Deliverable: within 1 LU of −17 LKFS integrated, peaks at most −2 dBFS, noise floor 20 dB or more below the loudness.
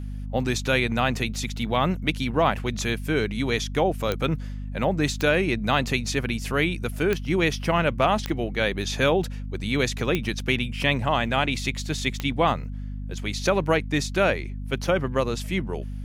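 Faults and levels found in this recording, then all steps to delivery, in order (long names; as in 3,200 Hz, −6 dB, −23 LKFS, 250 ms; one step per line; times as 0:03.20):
number of clicks 6; mains hum 50 Hz; hum harmonics up to 250 Hz; level of the hum −30 dBFS; integrated loudness −25.0 LKFS; sample peak −7.5 dBFS; target loudness −17.0 LKFS
→ click removal
hum removal 50 Hz, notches 5
level +8 dB
brickwall limiter −2 dBFS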